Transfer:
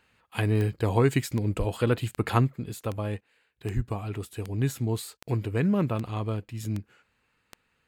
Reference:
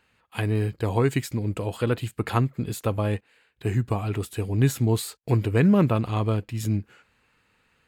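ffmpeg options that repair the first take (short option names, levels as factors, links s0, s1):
-filter_complex "[0:a]adeclick=t=4,asplit=3[s0][s1][s2];[s0]afade=t=out:st=1.58:d=0.02[s3];[s1]highpass=f=140:w=0.5412,highpass=f=140:w=1.3066,afade=t=in:st=1.58:d=0.02,afade=t=out:st=1.7:d=0.02[s4];[s2]afade=t=in:st=1.7:d=0.02[s5];[s3][s4][s5]amix=inputs=3:normalize=0,asplit=3[s6][s7][s8];[s6]afade=t=out:st=3.75:d=0.02[s9];[s7]highpass=f=140:w=0.5412,highpass=f=140:w=1.3066,afade=t=in:st=3.75:d=0.02,afade=t=out:st=3.87:d=0.02[s10];[s8]afade=t=in:st=3.87:d=0.02[s11];[s9][s10][s11]amix=inputs=3:normalize=0,asetnsamples=n=441:p=0,asendcmd='2.56 volume volume 6dB',volume=1"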